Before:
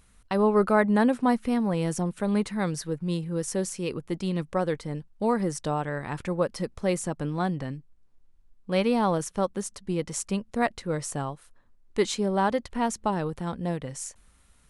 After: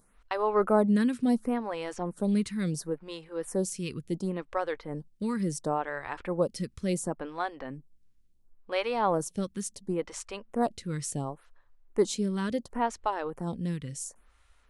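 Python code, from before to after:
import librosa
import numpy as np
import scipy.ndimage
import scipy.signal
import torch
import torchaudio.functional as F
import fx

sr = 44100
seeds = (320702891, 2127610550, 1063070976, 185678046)

y = fx.stagger_phaser(x, sr, hz=0.71)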